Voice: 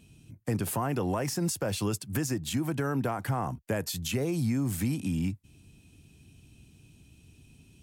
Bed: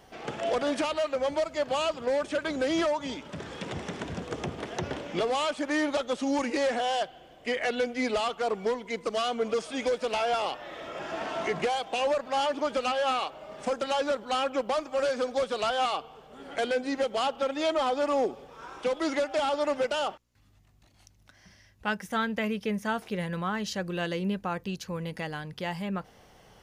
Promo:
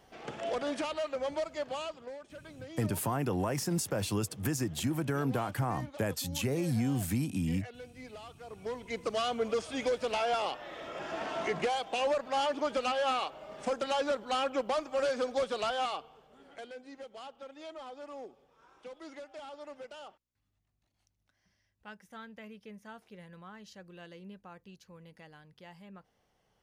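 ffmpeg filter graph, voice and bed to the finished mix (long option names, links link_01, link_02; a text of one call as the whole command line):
ffmpeg -i stem1.wav -i stem2.wav -filter_complex "[0:a]adelay=2300,volume=-2dB[link_01];[1:a]volume=10.5dB,afade=type=out:start_time=1.49:duration=0.7:silence=0.211349,afade=type=in:start_time=8.49:duration=0.53:silence=0.149624,afade=type=out:start_time=15.46:duration=1.21:silence=0.16788[link_02];[link_01][link_02]amix=inputs=2:normalize=0" out.wav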